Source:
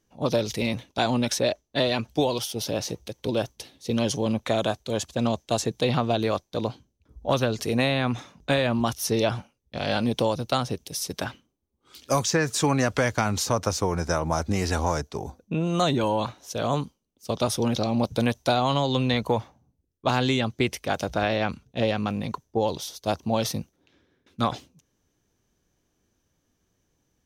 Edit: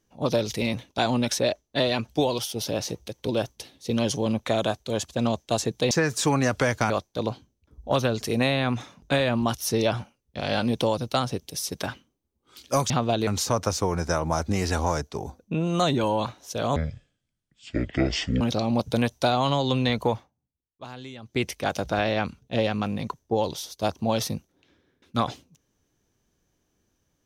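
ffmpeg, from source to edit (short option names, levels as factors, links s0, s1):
-filter_complex "[0:a]asplit=9[s0][s1][s2][s3][s4][s5][s6][s7][s8];[s0]atrim=end=5.912[s9];[s1]atrim=start=12.278:end=13.272[s10];[s2]atrim=start=6.278:end=12.282[s11];[s3]atrim=start=5.908:end=6.282[s12];[s4]atrim=start=13.268:end=16.764[s13];[s5]atrim=start=16.76:end=17.65,asetpts=PTS-STARTPTS,asetrate=23814,aresample=44100,atrim=end_sample=72683,asetpts=PTS-STARTPTS[s14];[s6]atrim=start=17.646:end=19.56,asetpts=PTS-STARTPTS,afade=t=out:st=1.694:d=0.22:silence=0.141254[s15];[s7]atrim=start=19.56:end=20.46,asetpts=PTS-STARTPTS,volume=0.141[s16];[s8]atrim=start=20.46,asetpts=PTS-STARTPTS,afade=t=in:d=0.22:silence=0.141254[s17];[s9][s10]acrossfade=d=0.004:c1=hsin:c2=hsin[s18];[s18][s11]acrossfade=d=0.004:c1=hsin:c2=hsin[s19];[s19][s12]acrossfade=d=0.004:c1=hsin:c2=hsin[s20];[s20][s13]acrossfade=d=0.004:c1=hsin:c2=hsin[s21];[s21][s14]acrossfade=d=0.004:c1=hsin:c2=hsin[s22];[s15][s16][s17]concat=n=3:v=0:a=1[s23];[s22][s23]acrossfade=d=0.004:c1=hsin:c2=hsin"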